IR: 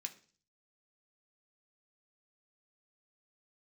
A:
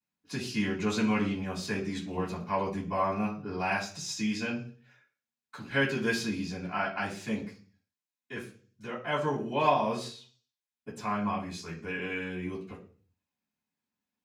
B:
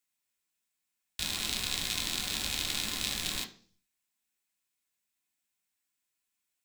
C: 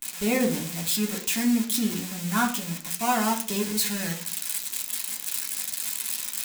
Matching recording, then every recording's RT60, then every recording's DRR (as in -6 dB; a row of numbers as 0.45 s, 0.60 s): B; 0.40 s, 0.40 s, 0.40 s; -11.0 dB, 4.0 dB, -2.0 dB